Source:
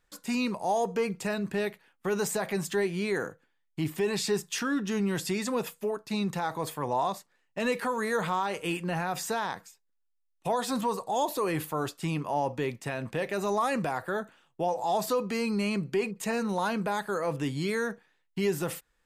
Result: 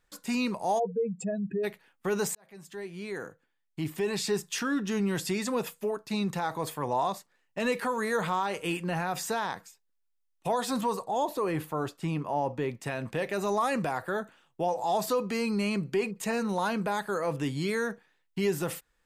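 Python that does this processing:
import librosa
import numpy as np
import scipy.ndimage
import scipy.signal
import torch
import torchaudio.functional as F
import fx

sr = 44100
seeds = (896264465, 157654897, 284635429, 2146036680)

y = fx.spec_expand(x, sr, power=3.1, at=(0.78, 1.63), fade=0.02)
y = fx.high_shelf(y, sr, hz=2500.0, db=-8.0, at=(11.05, 12.8))
y = fx.edit(y, sr, fx.fade_in_span(start_s=2.35, length_s=2.69, curve='qsin'), tone=tone)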